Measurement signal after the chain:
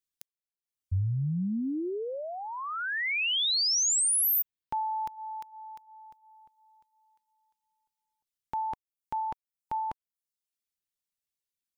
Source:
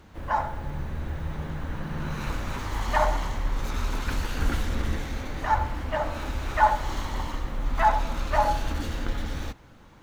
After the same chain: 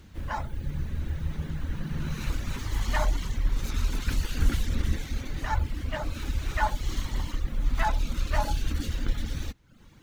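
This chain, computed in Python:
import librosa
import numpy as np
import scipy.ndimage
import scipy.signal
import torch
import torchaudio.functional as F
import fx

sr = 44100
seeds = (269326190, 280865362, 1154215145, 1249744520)

y = fx.dereverb_blind(x, sr, rt60_s=0.68)
y = fx.peak_eq(y, sr, hz=820.0, db=-12.0, octaves=2.2)
y = y * 10.0 ** (3.5 / 20.0)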